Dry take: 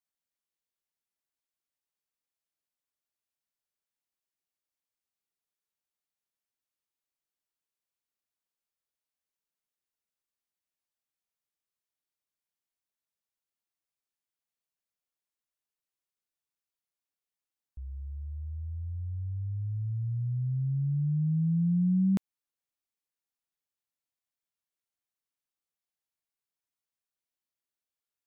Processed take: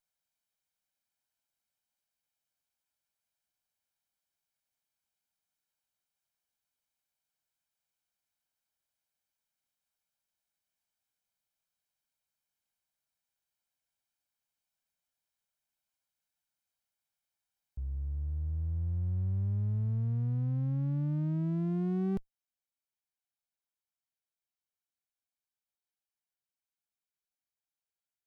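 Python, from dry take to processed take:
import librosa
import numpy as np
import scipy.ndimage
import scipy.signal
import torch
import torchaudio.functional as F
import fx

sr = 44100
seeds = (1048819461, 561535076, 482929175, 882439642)

y = fx.lower_of_two(x, sr, delay_ms=1.3)
y = fx.rider(y, sr, range_db=4, speed_s=0.5)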